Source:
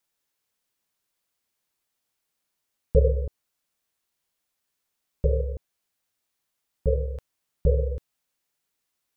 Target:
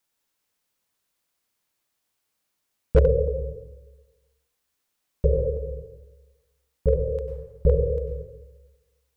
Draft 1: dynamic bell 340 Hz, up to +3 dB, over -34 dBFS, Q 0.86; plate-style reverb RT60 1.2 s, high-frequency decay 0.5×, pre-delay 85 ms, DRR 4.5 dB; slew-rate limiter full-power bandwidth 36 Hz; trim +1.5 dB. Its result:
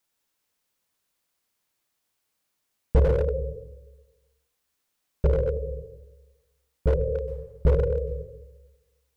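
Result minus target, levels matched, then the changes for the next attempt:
slew-rate limiter: distortion +10 dB
change: slew-rate limiter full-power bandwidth 99 Hz

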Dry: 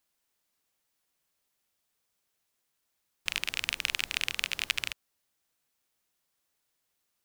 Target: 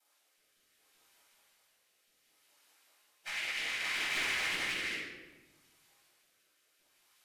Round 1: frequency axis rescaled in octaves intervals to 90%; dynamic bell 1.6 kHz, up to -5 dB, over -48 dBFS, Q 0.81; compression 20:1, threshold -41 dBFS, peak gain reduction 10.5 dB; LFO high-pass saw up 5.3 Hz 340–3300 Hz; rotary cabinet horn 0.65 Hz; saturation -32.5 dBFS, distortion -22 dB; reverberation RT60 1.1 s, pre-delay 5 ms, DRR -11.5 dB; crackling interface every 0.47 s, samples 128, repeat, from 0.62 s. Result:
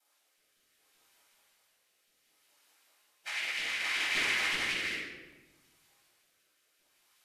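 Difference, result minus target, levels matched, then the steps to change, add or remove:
saturation: distortion -12 dB
change: saturation -42.5 dBFS, distortion -11 dB

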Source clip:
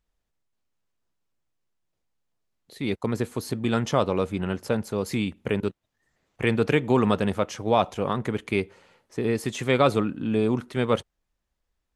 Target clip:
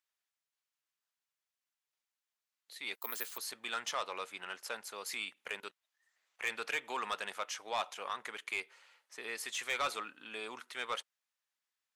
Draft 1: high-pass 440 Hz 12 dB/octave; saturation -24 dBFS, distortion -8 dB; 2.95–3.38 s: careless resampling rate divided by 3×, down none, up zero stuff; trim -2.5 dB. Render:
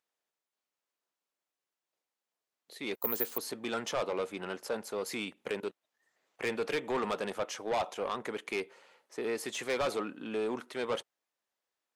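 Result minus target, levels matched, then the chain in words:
500 Hz band +8.0 dB
high-pass 1.3 kHz 12 dB/octave; saturation -24 dBFS, distortion -12 dB; 2.95–3.38 s: careless resampling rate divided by 3×, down none, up zero stuff; trim -2.5 dB

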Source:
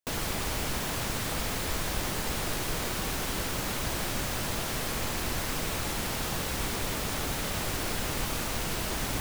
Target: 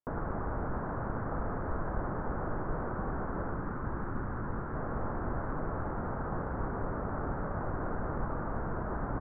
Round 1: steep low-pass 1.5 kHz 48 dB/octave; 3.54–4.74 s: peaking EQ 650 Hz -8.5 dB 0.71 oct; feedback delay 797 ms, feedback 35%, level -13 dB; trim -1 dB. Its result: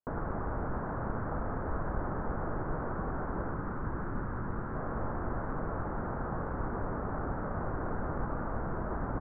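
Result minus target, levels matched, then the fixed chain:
echo 296 ms early
steep low-pass 1.5 kHz 48 dB/octave; 3.54–4.74 s: peaking EQ 650 Hz -8.5 dB 0.71 oct; feedback delay 1093 ms, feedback 35%, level -13 dB; trim -1 dB

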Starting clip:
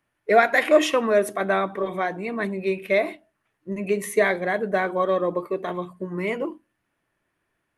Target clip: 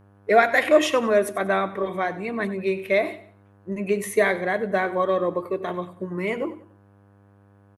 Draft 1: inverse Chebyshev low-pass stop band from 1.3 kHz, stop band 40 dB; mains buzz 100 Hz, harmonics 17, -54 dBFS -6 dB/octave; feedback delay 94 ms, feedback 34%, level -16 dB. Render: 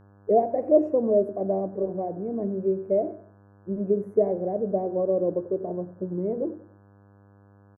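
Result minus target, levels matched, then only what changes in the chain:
1 kHz band -5.0 dB
remove: inverse Chebyshev low-pass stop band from 1.3 kHz, stop band 40 dB

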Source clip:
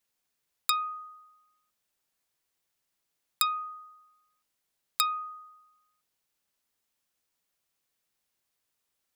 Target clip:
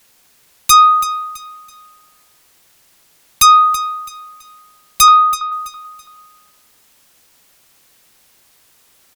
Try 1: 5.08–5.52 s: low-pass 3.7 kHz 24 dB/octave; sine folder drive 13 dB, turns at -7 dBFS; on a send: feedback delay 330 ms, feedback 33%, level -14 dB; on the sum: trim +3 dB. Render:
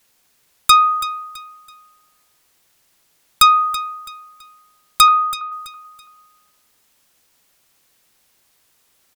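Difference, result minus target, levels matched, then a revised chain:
sine folder: distortion -8 dB
5.08–5.52 s: low-pass 3.7 kHz 24 dB/octave; sine folder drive 21 dB, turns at -7 dBFS; on a send: feedback delay 330 ms, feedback 33%, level -14 dB; on the sum: trim +3 dB

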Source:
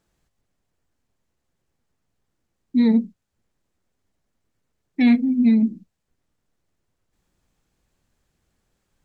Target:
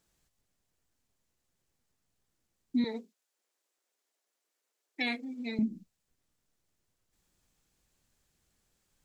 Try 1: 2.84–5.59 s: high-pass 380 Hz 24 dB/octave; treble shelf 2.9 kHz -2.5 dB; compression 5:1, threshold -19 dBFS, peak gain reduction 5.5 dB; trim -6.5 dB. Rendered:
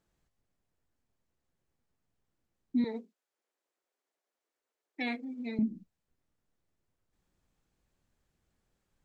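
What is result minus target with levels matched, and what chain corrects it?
4 kHz band -6.0 dB
2.84–5.59 s: high-pass 380 Hz 24 dB/octave; treble shelf 2.9 kHz +9.5 dB; compression 5:1, threshold -19 dBFS, peak gain reduction 5.5 dB; trim -6.5 dB

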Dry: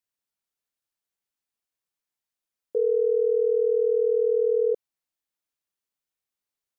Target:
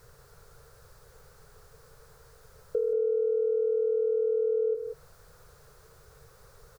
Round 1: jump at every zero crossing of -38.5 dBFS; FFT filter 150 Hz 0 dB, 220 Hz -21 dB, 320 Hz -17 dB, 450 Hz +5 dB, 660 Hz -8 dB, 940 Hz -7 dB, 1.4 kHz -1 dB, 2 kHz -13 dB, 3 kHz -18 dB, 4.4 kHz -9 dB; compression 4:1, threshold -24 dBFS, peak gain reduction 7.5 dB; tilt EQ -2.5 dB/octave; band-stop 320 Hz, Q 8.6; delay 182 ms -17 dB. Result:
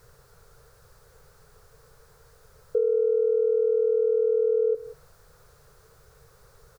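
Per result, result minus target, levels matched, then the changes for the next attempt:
echo-to-direct -9 dB; compression: peak gain reduction -5 dB
change: delay 182 ms -8 dB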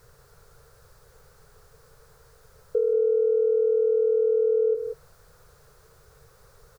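compression: peak gain reduction -5 dB
change: compression 4:1, threshold -30.5 dBFS, peak gain reduction 12 dB

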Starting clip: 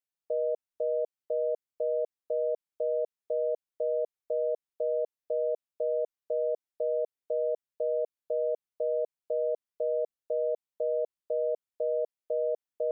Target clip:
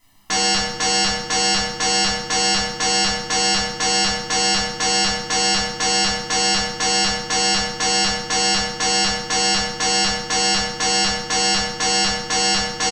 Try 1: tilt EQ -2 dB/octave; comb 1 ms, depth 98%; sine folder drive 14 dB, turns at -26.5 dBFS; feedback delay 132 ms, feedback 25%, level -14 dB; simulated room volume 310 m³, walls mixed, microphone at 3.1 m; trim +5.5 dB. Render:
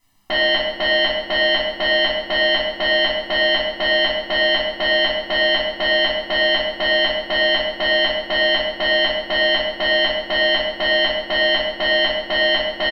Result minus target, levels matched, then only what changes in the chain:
sine folder: distortion -17 dB
change: sine folder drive 20 dB, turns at -26.5 dBFS

